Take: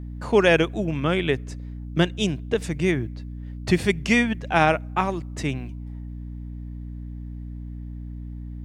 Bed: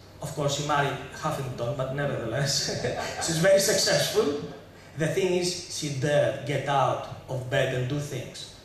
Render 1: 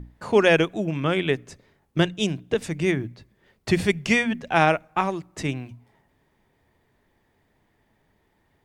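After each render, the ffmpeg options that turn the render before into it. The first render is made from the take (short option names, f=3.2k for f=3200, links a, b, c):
-af "bandreject=f=60:t=h:w=6,bandreject=f=120:t=h:w=6,bandreject=f=180:t=h:w=6,bandreject=f=240:t=h:w=6,bandreject=f=300:t=h:w=6"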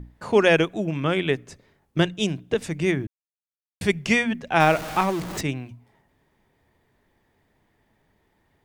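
-filter_complex "[0:a]asettb=1/sr,asplit=3[a][b][c];[a]atrim=end=4.604[d];[b]atrim=start=4.6:end=5.41,asetpts=PTS-STARTPTS,afade=t=in:d=0.004:c=qsin,afade=t=out:st=0.806:d=0.004:c=qsin,aeval=exprs='val(0)+0.5*0.0422*sgn(val(0))':c=same[e];[c]atrim=start=5.406[f];[d][e]acrossfade=d=0.004:c1=hsin:c2=qsin[g];[g][f]acrossfade=d=0.004:c1=qsin:c2=hsin,asplit=3[h][i][j];[h]atrim=end=3.07,asetpts=PTS-STARTPTS,afade=t=out:st=3.066:d=0.004:c=hsin[k];[i]atrim=start=3.07:end=3.81,asetpts=PTS-STARTPTS,volume=0[l];[j]atrim=start=3.81,asetpts=PTS-STARTPTS,afade=t=in:d=0.004:c=hsin[m];[k][l][m]concat=n=3:v=0:a=1"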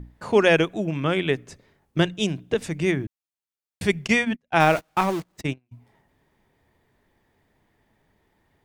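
-filter_complex "[0:a]asplit=3[a][b][c];[a]afade=t=out:st=4.06:d=0.02[d];[b]agate=range=-35dB:threshold=-28dB:ratio=16:release=100:detection=peak,afade=t=in:st=4.06:d=0.02,afade=t=out:st=5.71:d=0.02[e];[c]afade=t=in:st=5.71:d=0.02[f];[d][e][f]amix=inputs=3:normalize=0"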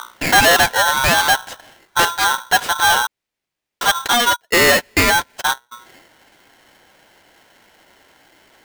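-filter_complex "[0:a]asplit=2[a][b];[b]highpass=f=720:p=1,volume=28dB,asoftclip=type=tanh:threshold=-3dB[c];[a][c]amix=inputs=2:normalize=0,lowpass=f=1.2k:p=1,volume=-6dB,aeval=exprs='val(0)*sgn(sin(2*PI*1200*n/s))':c=same"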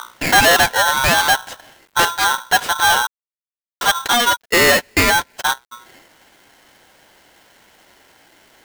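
-af "acrusher=bits=8:mix=0:aa=0.000001"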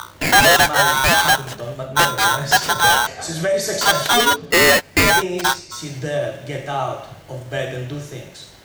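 -filter_complex "[1:a]volume=0.5dB[a];[0:a][a]amix=inputs=2:normalize=0"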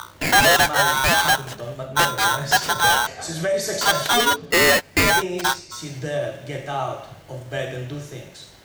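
-af "volume=-3dB"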